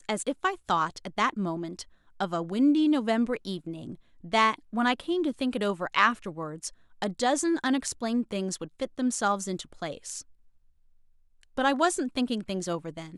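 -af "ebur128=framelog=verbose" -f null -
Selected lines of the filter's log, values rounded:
Integrated loudness:
  I:         -28.2 LUFS
  Threshold: -38.7 LUFS
Loudness range:
  LRA:         4.9 LU
  Threshold: -48.8 LUFS
  LRA low:   -32.0 LUFS
  LRA high:  -27.1 LUFS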